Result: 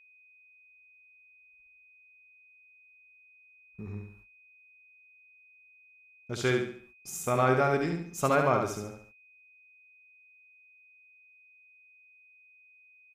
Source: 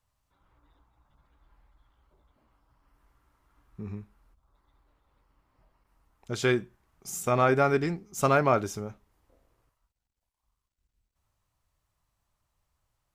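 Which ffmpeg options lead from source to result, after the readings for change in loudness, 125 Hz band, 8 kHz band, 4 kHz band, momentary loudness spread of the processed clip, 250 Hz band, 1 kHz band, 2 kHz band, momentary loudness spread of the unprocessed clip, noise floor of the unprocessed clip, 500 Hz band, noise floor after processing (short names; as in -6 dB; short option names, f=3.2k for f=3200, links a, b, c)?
-2.0 dB, -1.5 dB, -1.5 dB, -1.5 dB, 19 LU, -2.0 dB, -1.5 dB, -1.5 dB, 19 LU, -83 dBFS, -2.0 dB, -60 dBFS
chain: -af "aecho=1:1:70|140|210|280|350:0.562|0.219|0.0855|0.0334|0.013,agate=range=-31dB:threshold=-54dB:ratio=16:detection=peak,aeval=exprs='val(0)+0.002*sin(2*PI*2500*n/s)':c=same,volume=-3dB"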